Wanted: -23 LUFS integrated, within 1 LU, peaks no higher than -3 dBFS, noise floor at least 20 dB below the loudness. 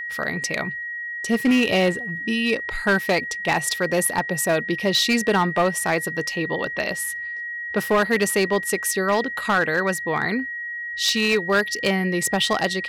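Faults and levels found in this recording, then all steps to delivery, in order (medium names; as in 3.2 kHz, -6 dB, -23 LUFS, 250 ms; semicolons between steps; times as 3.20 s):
clipped samples 1.2%; clipping level -13.0 dBFS; steady tone 1.9 kHz; tone level -28 dBFS; loudness -22.0 LUFS; peak level -13.0 dBFS; loudness target -23.0 LUFS
-> clip repair -13 dBFS; band-stop 1.9 kHz, Q 30; trim -1 dB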